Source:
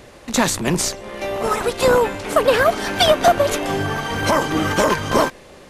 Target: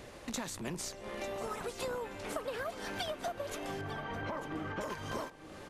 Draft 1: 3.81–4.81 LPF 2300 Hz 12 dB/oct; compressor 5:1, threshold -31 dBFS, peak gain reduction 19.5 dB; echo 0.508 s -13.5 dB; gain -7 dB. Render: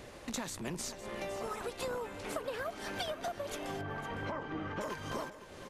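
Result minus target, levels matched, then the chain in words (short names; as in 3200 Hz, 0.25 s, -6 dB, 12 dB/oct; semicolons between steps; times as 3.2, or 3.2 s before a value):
echo 0.39 s early
3.81–4.81 LPF 2300 Hz 12 dB/oct; compressor 5:1, threshold -31 dBFS, peak gain reduction 19.5 dB; echo 0.898 s -13.5 dB; gain -7 dB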